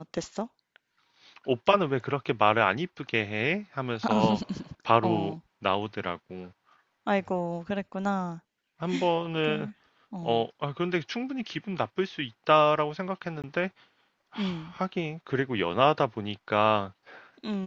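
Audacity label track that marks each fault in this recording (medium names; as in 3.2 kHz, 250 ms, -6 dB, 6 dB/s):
13.420000	13.440000	dropout 17 ms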